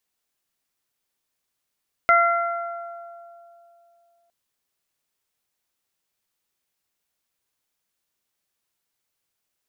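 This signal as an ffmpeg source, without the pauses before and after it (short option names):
-f lavfi -i "aevalsrc='0.126*pow(10,-3*t/2.89)*sin(2*PI*685*t)+0.224*pow(10,-3*t/1.81)*sin(2*PI*1370*t)+0.119*pow(10,-3*t/1.1)*sin(2*PI*2055*t)':d=2.21:s=44100"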